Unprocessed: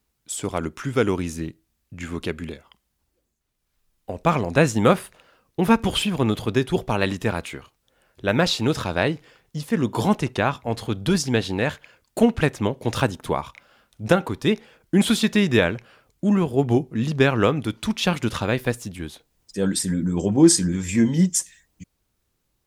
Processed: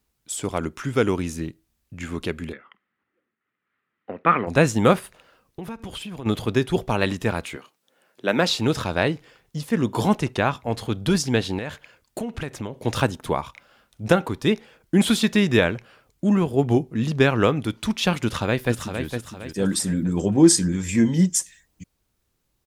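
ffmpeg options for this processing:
-filter_complex "[0:a]asplit=3[a][b][c];[a]afade=t=out:st=2.52:d=0.02[d];[b]highpass=f=140:w=0.5412,highpass=f=140:w=1.3066,equalizer=f=150:t=q:w=4:g=-9,equalizer=f=640:t=q:w=4:g=-6,equalizer=f=910:t=q:w=4:g=-4,equalizer=f=1.3k:t=q:w=4:g=10,equalizer=f=1.9k:t=q:w=4:g=10,lowpass=f=2.8k:w=0.5412,lowpass=f=2.8k:w=1.3066,afade=t=in:st=2.52:d=0.02,afade=t=out:st=4.46:d=0.02[e];[c]afade=t=in:st=4.46:d=0.02[f];[d][e][f]amix=inputs=3:normalize=0,asplit=3[g][h][i];[g]afade=t=out:st=4.99:d=0.02[j];[h]acompressor=threshold=-32dB:ratio=6:attack=3.2:release=140:knee=1:detection=peak,afade=t=in:st=4.99:d=0.02,afade=t=out:st=6.25:d=0.02[k];[i]afade=t=in:st=6.25:d=0.02[l];[j][k][l]amix=inputs=3:normalize=0,asettb=1/sr,asplit=3[m][n][o];[m]atrim=end=7.564[p];[n]atrim=start=7.56:end=8.5,asetpts=PTS-STARTPTS,afade=t=in:d=0.004:c=qsin,afade=t=out:st=0.936:d=0.004:c=qsin,highpass=f=180:w=0.5412,highpass=f=180:w=1.3066[q];[o]atrim=start=8.496[r];[p][q]acrossfade=d=0.004:c1=hsin:c2=qsin[s];[s][r]acrossfade=d=0.004:c1=qsin:c2=hsin,asettb=1/sr,asplit=3[t][u][v];[t]atrim=end=11.584[w];[u]atrim=start=11.58:end=12.82,asetpts=PTS-STARTPTS,afade=t=in:d=0.004:c=qsin,afade=t=out:st=1.236:d=0.004:c=qsin,acompressor=threshold=-26dB:ratio=6:attack=3.2:release=140:knee=1:detection=peak[x];[v]atrim=start=12.816[y];[w][x]acrossfade=d=0.004:c1=hsin:c2=qsin[z];[z][y]acrossfade=d=0.004:c1=qsin:c2=hsin,asplit=2[aa][ab];[ab]afade=t=in:st=18.23:d=0.01,afade=t=out:st=19.06:d=0.01,aecho=0:1:460|920|1380|1840|2300:0.446684|0.178673|0.0714694|0.0285877|0.0114351[ac];[aa][ac]amix=inputs=2:normalize=0"

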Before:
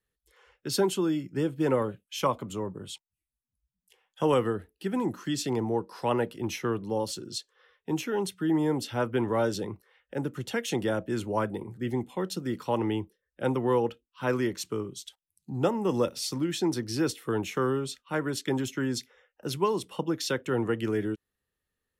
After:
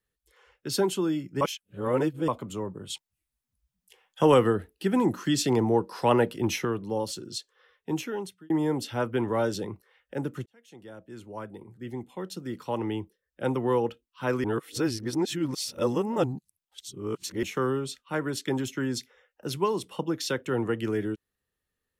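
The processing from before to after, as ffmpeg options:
-filter_complex "[0:a]asettb=1/sr,asplit=3[a][b][c];[a]atrim=end=2.904[d];[b]atrim=start=2.9:end=6.65,asetpts=PTS-STARTPTS,afade=t=in:d=0.004:c=qsin,afade=t=out:st=3.746:d=0.004:c=qsin,acontrast=28[e];[c]atrim=start=6.646[f];[d][e]acrossfade=d=0.004:c1=hsin:c2=qsin[g];[g][f]acrossfade=d=0.004:c1=qsin:c2=hsin,asplit=7[h][i][j][k][l][m][n];[h]atrim=end=1.412[o];[i]atrim=start=1.408:end=2.282,asetpts=PTS-STARTPTS,areverse[p];[j]atrim=start=2.278:end=8.5,asetpts=PTS-STARTPTS,afade=t=out:st=5.692:d=0.53[q];[k]atrim=start=8.5:end=10.46,asetpts=PTS-STARTPTS,afade=t=in:d=0.004:c=hsin,afade=t=out:st=1.956:d=0.004:c=hsin[r];[l]atrim=start=10.46:end=14.442,asetpts=PTS-STARTPTS,afade=t=in:d=3.09[s];[m]atrim=start=14.438:end=17.432,asetpts=PTS-STARTPTS,areverse[t];[n]atrim=start=17.428[u];[o][p]acrossfade=d=0.004:c1=hsin:c2=hsin[v];[q][r][s]concat=n=3:v=0:a=1[w];[v][w]acrossfade=d=0.004:c1=hsin:c2=hsin[x];[x][t]acrossfade=d=0.004:c1=hsin:c2=hsin[y];[y][u]acrossfade=d=0.004:c1=hsin:c2=hsin"

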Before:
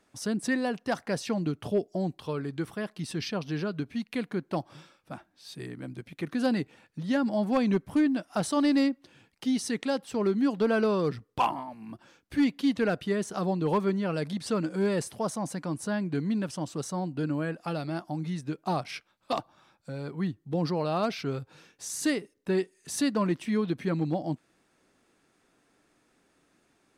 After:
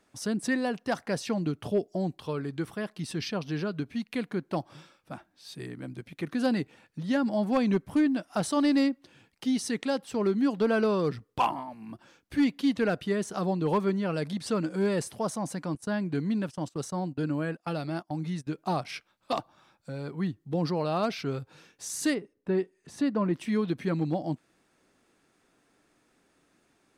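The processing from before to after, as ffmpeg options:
-filter_complex "[0:a]asettb=1/sr,asplit=3[a][b][c];[a]atrim=end=15.754[d];[b]atrim=start=15.75:end=18.47,asetpts=PTS-STARTPTS,afade=t=in:d=0.004:c=qsin,afade=t=out:st=2.716:d=0.004:c=qsin,agate=range=-18dB:threshold=-40dB:ratio=16:release=100:detection=peak[e];[c]atrim=start=18.466[f];[d][e]acrossfade=d=0.004:c1=hsin:c2=qsin[g];[g][f]acrossfade=d=0.004:c1=qsin:c2=hsin,asplit=3[h][i][j];[h]afade=t=out:st=22.13:d=0.02[k];[i]lowpass=f=1.3k:p=1,afade=t=in:st=22.13:d=0.02,afade=t=out:st=23.33:d=0.02[l];[j]afade=t=in:st=23.33:d=0.02[m];[k][l][m]amix=inputs=3:normalize=0"

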